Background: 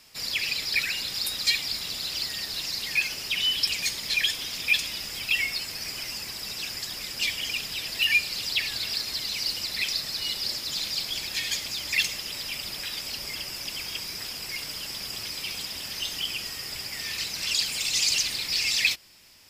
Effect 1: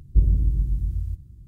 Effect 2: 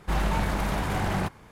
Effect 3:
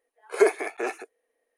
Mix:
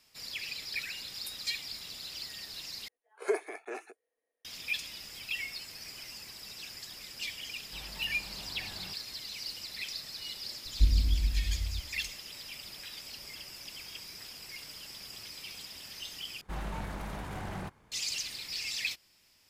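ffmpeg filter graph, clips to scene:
-filter_complex "[2:a]asplit=2[s0][s1];[0:a]volume=0.282[s2];[s0]alimiter=level_in=1.12:limit=0.0631:level=0:latency=1:release=71,volume=0.891[s3];[1:a]aecho=1:1:3.8:0.85[s4];[s2]asplit=3[s5][s6][s7];[s5]atrim=end=2.884[s8];[3:a]atrim=end=1.57,asetpts=PTS-STARTPTS,volume=0.282[s9];[s6]atrim=start=4.446:end=16.414[s10];[s1]atrim=end=1.51,asetpts=PTS-STARTPTS,volume=0.251[s11];[s7]atrim=start=17.916[s12];[s3]atrim=end=1.51,asetpts=PTS-STARTPTS,volume=0.15,afade=t=in:d=0.004:c=hsin,afade=t=out:st=1.506:d=0.004:c=hsin,adelay=7650[s13];[s4]atrim=end=1.47,asetpts=PTS-STARTPTS,volume=0.335,afade=t=in:d=0.004:c=hsin,afade=t=out:st=1.466:d=0.004:c=hsin,adelay=10650[s14];[s8][s9]acrossfade=d=0.004:c1=hsin:c2=hsin[s15];[s15][s10]acrossfade=d=0.004:c1=hsin:c2=hsin[s16];[s16][s11]acrossfade=d=0.004:c1=hsin:c2=hsin[s17];[s17][s12]acrossfade=d=0.004:c1=hsin:c2=hsin[s18];[s18][s13][s14]amix=inputs=3:normalize=0"

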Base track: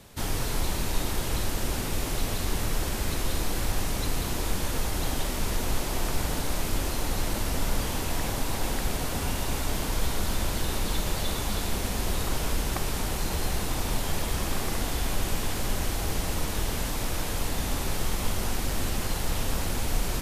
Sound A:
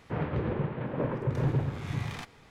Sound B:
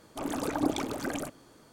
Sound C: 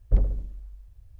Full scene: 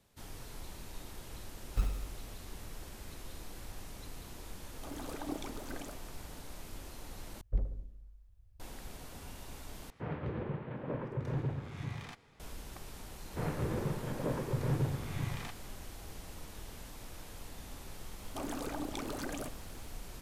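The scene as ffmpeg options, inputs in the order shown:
-filter_complex "[3:a]asplit=2[s0][s1];[2:a]asplit=2[s2][s3];[1:a]asplit=2[s4][s5];[0:a]volume=0.119[s6];[s0]acrusher=samples=34:mix=1:aa=0.000001[s7];[s1]asplit=2[s8][s9];[s9]adelay=118,lowpass=f=880:p=1,volume=0.106,asplit=2[s10][s11];[s11]adelay=118,lowpass=f=880:p=1,volume=0.55,asplit=2[s12][s13];[s13]adelay=118,lowpass=f=880:p=1,volume=0.55,asplit=2[s14][s15];[s15]adelay=118,lowpass=f=880:p=1,volume=0.55[s16];[s8][s10][s12][s14][s16]amix=inputs=5:normalize=0[s17];[s3]acompressor=threshold=0.0251:ratio=6:attack=3.2:release=140:knee=1:detection=peak[s18];[s6]asplit=3[s19][s20][s21];[s19]atrim=end=7.414[s22];[s17]atrim=end=1.19,asetpts=PTS-STARTPTS,volume=0.266[s23];[s20]atrim=start=8.596:end=9.904[s24];[s4]atrim=end=2.5,asetpts=PTS-STARTPTS,volume=0.422[s25];[s21]atrim=start=12.396[s26];[s7]atrim=end=1.19,asetpts=PTS-STARTPTS,volume=0.282,afade=t=in:d=0.004:c=hsin,afade=t=out:st=1.186:d=0.004:c=hsin,adelay=1650[s27];[s2]atrim=end=1.72,asetpts=PTS-STARTPTS,volume=0.266,afade=t=in:d=0.004:c=hsin,afade=t=out:st=1.716:d=0.004:c=hsin,adelay=4660[s28];[s5]atrim=end=2.5,asetpts=PTS-STARTPTS,volume=0.596,afade=t=in:d=0.004:c=hsin,afade=t=out:st=2.496:d=0.004:c=hsin,adelay=13260[s29];[s18]atrim=end=1.72,asetpts=PTS-STARTPTS,volume=0.708,afade=t=in:d=0.004:c=hsin,afade=t=out:st=1.716:d=0.004:c=hsin,adelay=18190[s30];[s22][s23]acrossfade=d=0.004:c1=hsin:c2=hsin[s31];[s31][s24]acrossfade=d=0.004:c1=hsin:c2=hsin[s32];[s32][s25]acrossfade=d=0.004:c1=hsin:c2=hsin[s33];[s33][s26]acrossfade=d=0.004:c1=hsin:c2=hsin[s34];[s34][s27][s28][s29][s30]amix=inputs=5:normalize=0"

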